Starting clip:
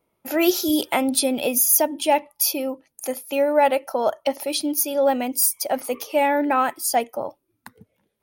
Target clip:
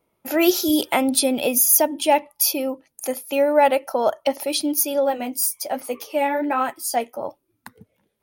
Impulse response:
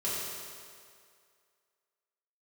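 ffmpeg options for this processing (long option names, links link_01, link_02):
-filter_complex "[0:a]asplit=3[link_01][link_02][link_03];[link_01]afade=type=out:start_time=4.99:duration=0.02[link_04];[link_02]flanger=delay=7:depth=7.4:regen=-40:speed=1.2:shape=triangular,afade=type=in:start_time=4.99:duration=0.02,afade=type=out:start_time=7.22:duration=0.02[link_05];[link_03]afade=type=in:start_time=7.22:duration=0.02[link_06];[link_04][link_05][link_06]amix=inputs=3:normalize=0,volume=1.5dB"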